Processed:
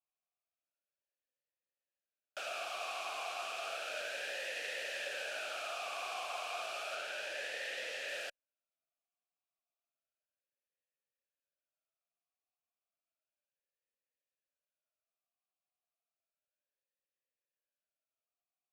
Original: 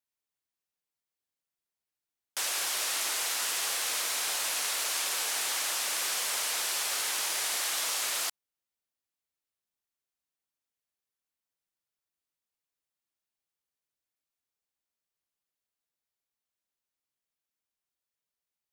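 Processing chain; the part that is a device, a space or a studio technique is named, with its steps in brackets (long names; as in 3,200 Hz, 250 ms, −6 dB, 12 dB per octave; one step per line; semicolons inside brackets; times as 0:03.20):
talk box (tube saturation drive 23 dB, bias 0.7; formant filter swept between two vowels a-e 0.32 Hz)
0:06.95–0:08.09: high-shelf EQ 8,900 Hz −5 dB
level +11 dB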